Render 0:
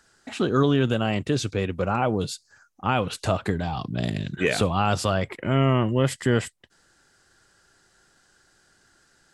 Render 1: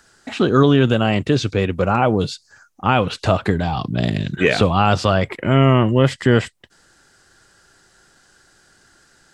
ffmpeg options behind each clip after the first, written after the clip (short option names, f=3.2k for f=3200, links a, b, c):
-filter_complex "[0:a]acrossover=split=5900[a][b];[b]acompressor=threshold=-57dB:ratio=4:attack=1:release=60[c];[a][c]amix=inputs=2:normalize=0,volume=7dB"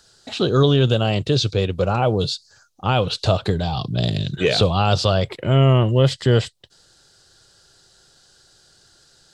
-af "equalizer=f=125:t=o:w=1:g=4,equalizer=f=250:t=o:w=1:g=-7,equalizer=f=500:t=o:w=1:g=3,equalizer=f=1k:t=o:w=1:g=-3,equalizer=f=2k:t=o:w=1:g=-9,equalizer=f=4k:t=o:w=1:g=10,volume=-1.5dB"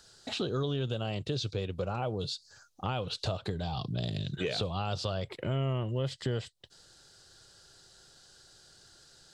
-af "acompressor=threshold=-30dB:ratio=3,volume=-3.5dB"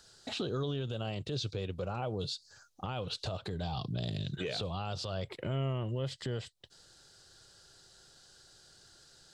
-af "alimiter=level_in=0.5dB:limit=-24dB:level=0:latency=1:release=43,volume=-0.5dB,volume=-1.5dB"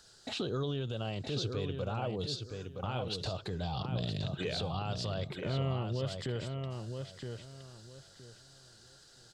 -filter_complex "[0:a]asplit=2[a][b];[b]adelay=968,lowpass=f=4k:p=1,volume=-5.5dB,asplit=2[c][d];[d]adelay=968,lowpass=f=4k:p=1,volume=0.24,asplit=2[e][f];[f]adelay=968,lowpass=f=4k:p=1,volume=0.24[g];[a][c][e][g]amix=inputs=4:normalize=0"